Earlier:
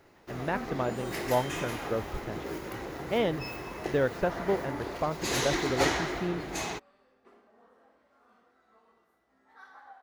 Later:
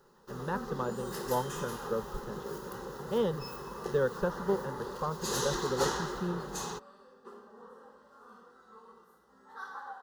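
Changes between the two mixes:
second sound +11.5 dB
master: add phaser with its sweep stopped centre 450 Hz, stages 8

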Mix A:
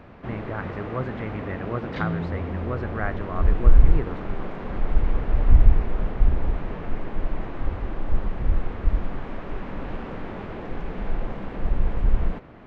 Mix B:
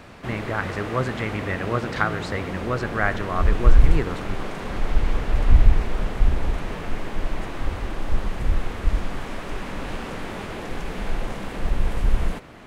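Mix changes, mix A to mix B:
speech: send on
second sound −8.0 dB
master: remove head-to-tape spacing loss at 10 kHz 34 dB

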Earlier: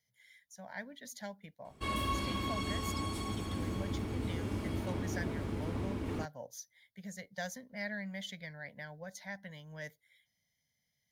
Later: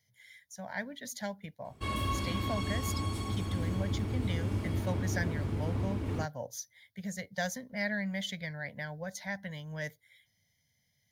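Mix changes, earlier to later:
speech +6.0 dB
master: add parametric band 100 Hz +7.5 dB 0.85 octaves

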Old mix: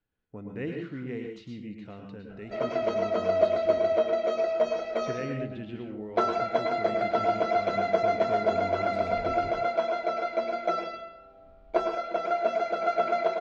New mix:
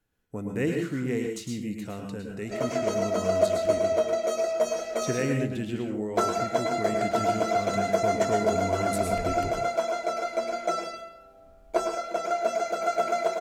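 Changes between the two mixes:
speech +7.0 dB
master: remove low-pass filter 4,000 Hz 24 dB per octave

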